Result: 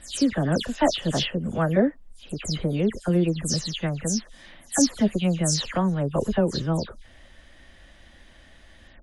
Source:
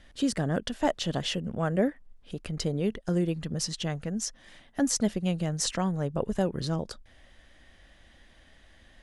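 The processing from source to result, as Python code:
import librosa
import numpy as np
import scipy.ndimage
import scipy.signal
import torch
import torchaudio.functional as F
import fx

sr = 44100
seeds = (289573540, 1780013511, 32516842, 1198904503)

y = fx.spec_delay(x, sr, highs='early', ms=153)
y = F.gain(torch.from_numpy(y), 5.5).numpy()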